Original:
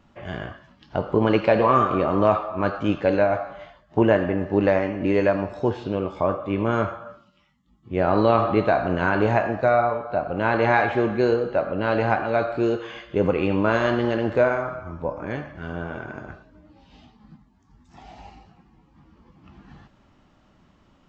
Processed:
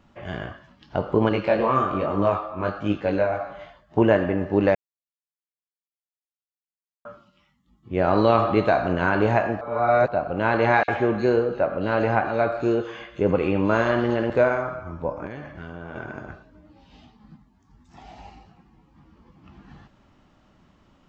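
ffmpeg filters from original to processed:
-filter_complex "[0:a]asettb=1/sr,asplit=3[a][b][c];[a]atrim=end=1.294[d];[b]atrim=start=1.29:end=3.4,asetpts=PTS-STARTPTS,afade=t=in:d=0.004:c=qsin,afade=t=out:st=2.106:d=0.004:c=qsin,flanger=delay=19.5:depth=2.9:speed=1.2[e];[c]atrim=start=3.396[f];[d][e]acrossfade=d=0.004:c1=hsin:c2=qsin[g];[g][f]acrossfade=d=0.004:c1=qsin:c2=hsin,asettb=1/sr,asplit=3[h][i][j];[h]atrim=end=8.044[k];[i]atrim=start=8.04:end=8.93,asetpts=PTS-STARTPTS,afade=t=in:d=0.004:c=qsin,afade=t=out:st=0.886:d=0.004:c=qsin,highshelf=f=5.7k:g=8.5[l];[j]atrim=start=8.926[m];[k][l]acrossfade=d=0.004:c1=hsin:c2=qsin[n];[n][m]acrossfade=d=0.004:c1=qsin:c2=hsin,asettb=1/sr,asplit=3[o][p][q];[o]atrim=end=10.834[r];[p]atrim=start=10.83:end=14.3,asetpts=PTS-STARTPTS,afade=t=in:d=0.004:c=qsin,afade=t=out:st=3.466:d=0.004:c=qsin,acrossover=split=3500[s][t];[s]adelay=50[u];[u][t]amix=inputs=2:normalize=0,atrim=end_sample=153027[v];[q]atrim=start=14.296[w];[r][v]acrossfade=d=0.004:c1=hsin:c2=qsin[x];[x][w]acrossfade=d=0.004:c1=qsin:c2=hsin,asettb=1/sr,asplit=3[y][z][aa];[y]atrim=end=15.264[ab];[z]atrim=start=15.26:end=15.96,asetpts=PTS-STARTPTS,afade=t=in:d=0.004:c=qsin,afade=t=out:st=0.696:d=0.004:c=qsin,acompressor=threshold=-31dB:ratio=6:attack=3.2:release=140:knee=1:detection=peak[ac];[aa]atrim=start=15.956[ad];[ab][ac]acrossfade=d=0.004:c1=hsin:c2=qsin[ae];[ae][ad]acrossfade=d=0.004:c1=qsin:c2=hsin,asplit=5[af][ag][ah][ai][aj];[af]atrim=end=4.75,asetpts=PTS-STARTPTS,afade=t=out:st=4.746:d=0.004:c=hsin[ak];[ag]atrim=start=4.75:end=7.05,asetpts=PTS-STARTPTS,volume=0[al];[ah]atrim=start=7.05:end=9.612,asetpts=PTS-STARTPTS,afade=t=in:d=0.004:c=hsin[am];[ai]atrim=start=9.608:end=10.082,asetpts=PTS-STARTPTS,areverse[an];[aj]atrim=start=10.078[ao];[ak][al][am]concat=n=3:v=0:a=1[ap];[ap][an]acrossfade=d=0.004:c1=hsin:c2=hsin[aq];[aq][ao]acrossfade=d=0.004:c1=hsin:c2=hsin"

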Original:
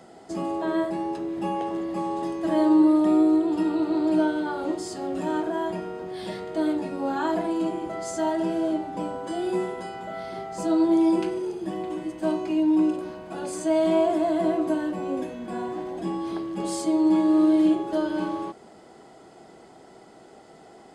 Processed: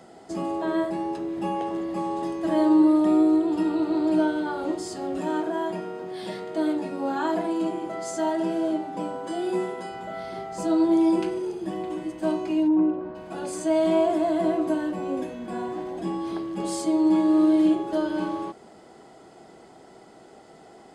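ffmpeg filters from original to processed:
-filter_complex "[0:a]asettb=1/sr,asplit=3[a][b][c];[a]atrim=end=5.174[d];[b]atrim=start=5.17:end=9.92,asetpts=PTS-STARTPTS,afade=t=in:d=0.004:c=qsin,afade=t=out:st=4.746:d=0.004:c=qsin,highpass=140[e];[c]atrim=start=9.916[f];[d][e]acrossfade=d=0.004:c1=hsin:c2=qsin[g];[g][f]acrossfade=d=0.004:c1=qsin:c2=hsin,asplit=3[h][i][j];[h]afade=t=out:st=12.67:d=0.02[k];[i]lowpass=1.4k,afade=t=in:st=12.67:d=0.02,afade=t=out:st=13.14:d=0.02[l];[j]afade=t=in:st=13.14:d=0.02[m];[k][l][m]amix=inputs=3:normalize=0"

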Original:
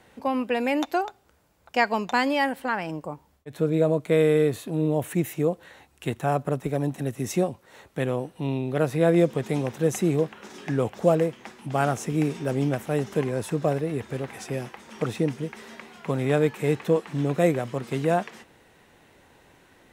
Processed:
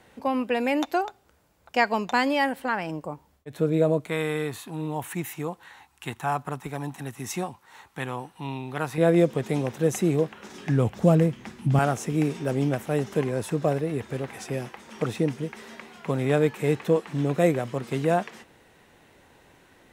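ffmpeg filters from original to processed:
-filter_complex "[0:a]asettb=1/sr,asplit=3[a][b][c];[a]atrim=end=4.084[d];[b]atrim=start=4.08:end=8.98,asetpts=PTS-STARTPTS,afade=t=in:d=0.004:c=qsin,afade=t=out:st=4.896:d=0.004:c=qsin,lowshelf=f=710:t=q:w=3:g=-6[e];[c]atrim=start=8.976[f];[d][e]acrossfade=d=0.004:c1=hsin:c2=qsin[g];[g][f]acrossfade=d=0.004:c1=qsin:c2=hsin,asettb=1/sr,asplit=3[h][i][j];[h]atrim=end=10.264[k];[i]atrim=start=10.26:end=11.79,asetpts=PTS-STARTPTS,afade=t=in:d=0.004:c=qsin,afade=t=out:st=1.526:d=0.004:c=qsin,asubboost=boost=10:cutoff=240[l];[j]atrim=start=11.786[m];[k][l]acrossfade=d=0.004:c1=hsin:c2=qsin[n];[n][m]acrossfade=d=0.004:c1=qsin:c2=hsin"

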